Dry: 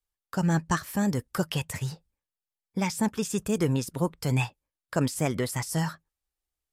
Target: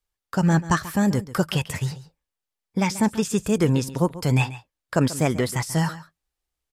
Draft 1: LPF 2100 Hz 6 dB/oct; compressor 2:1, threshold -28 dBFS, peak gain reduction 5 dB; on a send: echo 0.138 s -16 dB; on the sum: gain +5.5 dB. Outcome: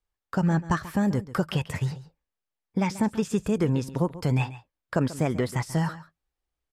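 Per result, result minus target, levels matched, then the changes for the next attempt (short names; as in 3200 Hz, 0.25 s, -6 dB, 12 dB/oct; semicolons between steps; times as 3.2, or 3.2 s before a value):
8000 Hz band -6.5 dB; compressor: peak gain reduction +5 dB
change: LPF 7900 Hz 6 dB/oct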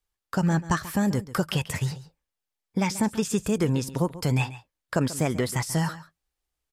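compressor: peak gain reduction +5 dB
remove: compressor 2:1, threshold -28 dBFS, peak gain reduction 5 dB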